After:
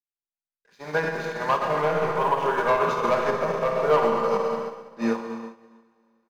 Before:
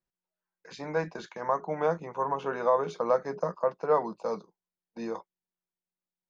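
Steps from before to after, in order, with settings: bell 1700 Hz +6 dB 1.5 oct; sample leveller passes 2; Schroeder reverb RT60 3 s, combs from 27 ms, DRR -1.5 dB; limiter -14 dBFS, peak gain reduction 9 dB; comb 5 ms, depth 33%; upward expander 2.5:1, over -36 dBFS; gain +3 dB

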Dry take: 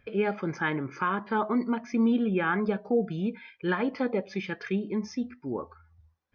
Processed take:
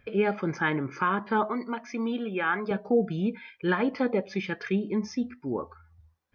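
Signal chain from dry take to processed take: 1.49–2.71 HPF 600 Hz 6 dB/oct; gain +2 dB

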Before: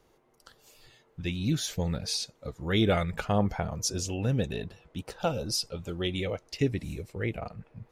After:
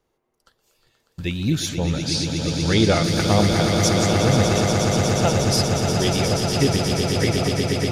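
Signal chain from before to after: swelling echo 0.12 s, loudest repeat 8, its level -8 dB; gate -51 dBFS, range -14 dB; 1.69–3.04 LPF 8200 Hz 12 dB/oct; gain +6.5 dB

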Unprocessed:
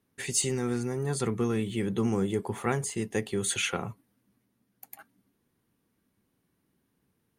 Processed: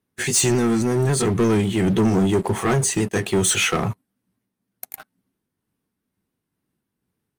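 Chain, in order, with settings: repeated pitch sweeps -1.5 st, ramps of 0.273 s; sample leveller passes 3; gain +3 dB

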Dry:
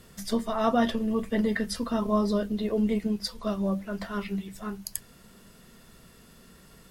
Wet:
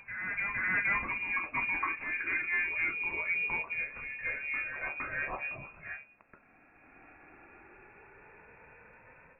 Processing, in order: speed glide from 88% -> 59%; tilt +4 dB/oct; AGC gain up to 11 dB; soft clip -16 dBFS, distortion -11 dB; inverted band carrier 2600 Hz; reverse echo 0.463 s -6.5 dB; gain -8.5 dB

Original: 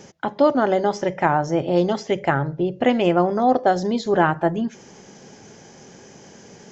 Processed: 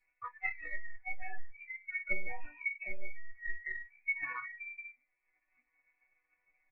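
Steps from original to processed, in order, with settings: spectral trails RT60 0.96 s; spring tank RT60 1.1 s, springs 58 ms, chirp 45 ms, DRR 19 dB; compressor 2:1, threshold -30 dBFS, peak gain reduction 11 dB; soft clip -24.5 dBFS, distortion -11 dB; bell 200 Hz -6.5 dB 0.77 oct; inverted band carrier 2600 Hz; monotone LPC vocoder at 8 kHz 190 Hz; resonator bank B3 minor, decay 0.4 s; spectral noise reduction 30 dB; comb 6.3 ms, depth 71%; treble ducked by the level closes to 1400 Hz, closed at -45 dBFS; transient shaper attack +7 dB, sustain -5 dB; gain +13.5 dB

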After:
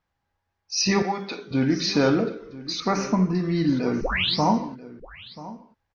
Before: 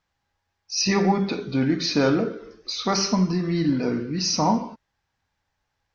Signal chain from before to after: 1.02–1.51 HPF 790 Hz 6 dB/oct; 2.8–3.35 band shelf 4100 Hz -15.5 dB 1.1 oct; 4.01 tape start 0.41 s; echo 0.986 s -17 dB; mismatched tape noise reduction decoder only

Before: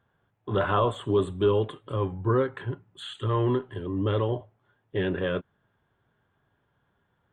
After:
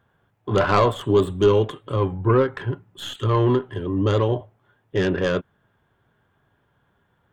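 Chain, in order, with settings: tracing distortion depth 0.099 ms; gain +6 dB

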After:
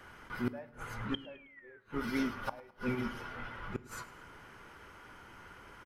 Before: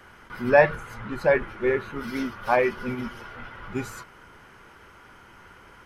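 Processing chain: dynamic EQ 600 Hz, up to +6 dB, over -33 dBFS, Q 1.5; painted sound fall, 1.14–1.8, 1500–3200 Hz -23 dBFS; flipped gate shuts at -18 dBFS, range -33 dB; on a send: feedback echo 0.106 s, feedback 44%, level -20 dB; on the sum: FDN reverb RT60 0.62 s, low-frequency decay 1.55×, high-frequency decay 1×, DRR 16.5 dB; gain -3.5 dB

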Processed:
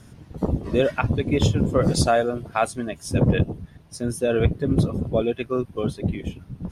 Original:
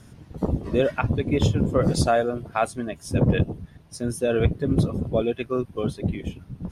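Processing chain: 0.69–3.29 bell 6800 Hz +3 dB 2.6 oct; gain +1 dB

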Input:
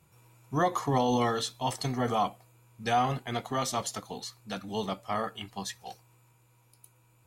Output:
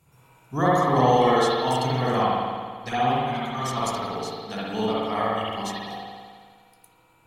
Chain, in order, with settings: 2.21–3.77 envelope flanger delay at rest 3.5 ms, full sweep at -22.5 dBFS; spring tank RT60 1.8 s, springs 55 ms, chirp 30 ms, DRR -7.5 dB

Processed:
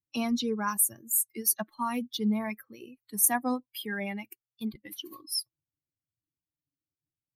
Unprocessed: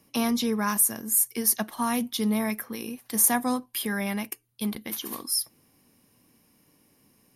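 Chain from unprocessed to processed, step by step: per-bin expansion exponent 2; 2.18–3.23 bell 7000 Hz -9.5 dB 0.56 oct; record warp 33 1/3 rpm, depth 100 cents

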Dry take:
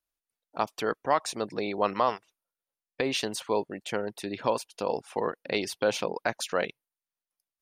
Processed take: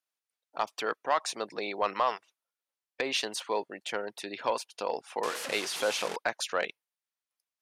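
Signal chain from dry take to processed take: 5.23–6.16 delta modulation 64 kbps, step -29 dBFS; weighting filter A; soft clip -15 dBFS, distortion -19 dB

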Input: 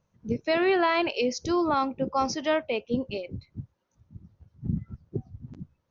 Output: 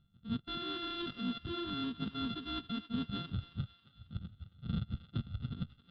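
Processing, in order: sample sorter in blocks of 64 samples; EQ curve 150 Hz 0 dB, 220 Hz +3 dB, 650 Hz -25 dB, 1400 Hz -6 dB, 2200 Hz -19 dB, 3500 Hz +9 dB, 6700 Hz -26 dB; reverse; compressor 6:1, threshold -39 dBFS, peak gain reduction 15.5 dB; reverse; air absorption 300 m; thinning echo 0.271 s, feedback 52%, high-pass 860 Hz, level -12.5 dB; gain +6 dB

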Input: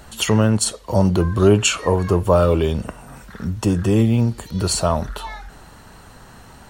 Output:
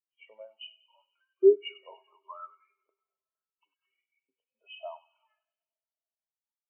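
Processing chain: nonlinear frequency compression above 2100 Hz 4:1; dynamic EQ 440 Hz, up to -7 dB, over -34 dBFS, Q 6.2; LFO high-pass saw up 0.7 Hz 390–2000 Hz; 3.94–4.8 frequency shift +37 Hz; thinning echo 97 ms, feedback 82%, high-pass 1000 Hz, level -7 dB; digital reverb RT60 4.9 s, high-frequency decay 0.4×, pre-delay 10 ms, DRR 13 dB; spectral expander 2.5:1; gain -8 dB

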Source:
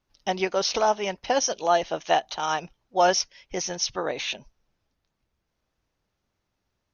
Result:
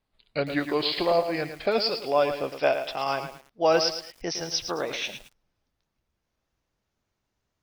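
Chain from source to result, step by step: speed glide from 74% -> 108%; lo-fi delay 0.11 s, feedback 35%, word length 7-bit, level -8.5 dB; gain -1.5 dB

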